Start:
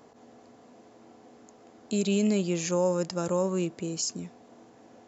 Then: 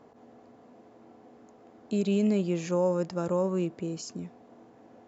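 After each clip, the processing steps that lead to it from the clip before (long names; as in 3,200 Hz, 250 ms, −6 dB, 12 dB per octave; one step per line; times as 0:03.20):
low-pass filter 1,800 Hz 6 dB per octave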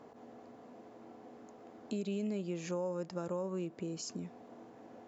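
low-shelf EQ 110 Hz −6 dB
downward compressor 2.5 to 1, threshold −40 dBFS, peak gain reduction 12.5 dB
level +1 dB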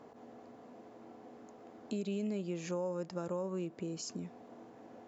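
no processing that can be heard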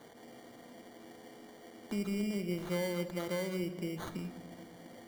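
decimation without filtering 17×
rectangular room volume 1,900 cubic metres, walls mixed, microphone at 0.79 metres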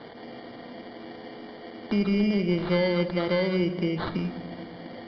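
in parallel at −3.5 dB: gain into a clipping stage and back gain 30.5 dB
on the sum: downsampling to 11,025 Hz
level +7 dB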